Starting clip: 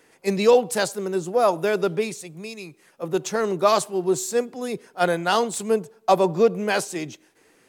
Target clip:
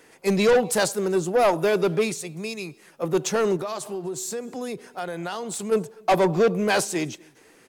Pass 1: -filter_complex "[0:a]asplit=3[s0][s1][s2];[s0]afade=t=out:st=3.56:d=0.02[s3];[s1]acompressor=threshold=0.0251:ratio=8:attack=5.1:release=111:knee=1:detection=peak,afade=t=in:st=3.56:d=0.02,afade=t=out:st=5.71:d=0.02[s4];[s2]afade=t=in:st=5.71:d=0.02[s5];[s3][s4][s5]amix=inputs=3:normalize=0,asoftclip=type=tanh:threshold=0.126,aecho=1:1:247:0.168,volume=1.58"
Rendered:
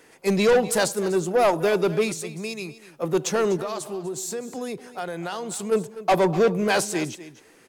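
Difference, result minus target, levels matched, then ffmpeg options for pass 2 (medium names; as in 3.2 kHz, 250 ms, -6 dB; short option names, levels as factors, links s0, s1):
echo-to-direct +11.5 dB
-filter_complex "[0:a]asplit=3[s0][s1][s2];[s0]afade=t=out:st=3.56:d=0.02[s3];[s1]acompressor=threshold=0.0251:ratio=8:attack=5.1:release=111:knee=1:detection=peak,afade=t=in:st=3.56:d=0.02,afade=t=out:st=5.71:d=0.02[s4];[s2]afade=t=in:st=5.71:d=0.02[s5];[s3][s4][s5]amix=inputs=3:normalize=0,asoftclip=type=tanh:threshold=0.126,aecho=1:1:247:0.0447,volume=1.58"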